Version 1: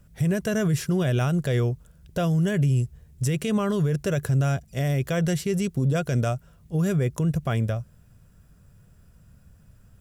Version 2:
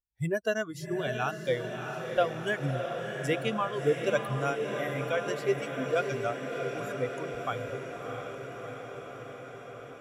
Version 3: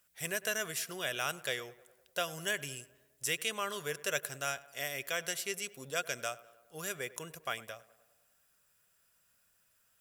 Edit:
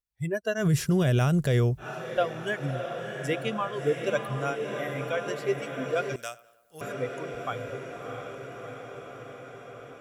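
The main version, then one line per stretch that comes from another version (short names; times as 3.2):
2
0.62–1.82 from 1, crossfade 0.10 s
6.16–6.81 from 3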